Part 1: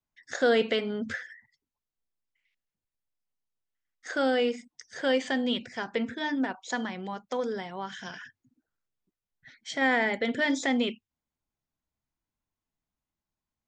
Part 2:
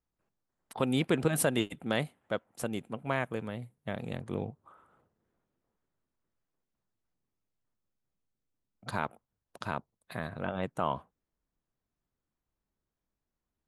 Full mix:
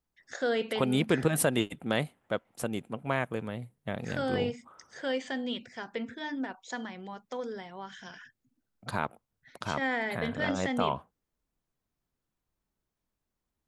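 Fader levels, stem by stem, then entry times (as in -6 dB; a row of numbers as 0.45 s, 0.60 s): -6.0 dB, +1.5 dB; 0.00 s, 0.00 s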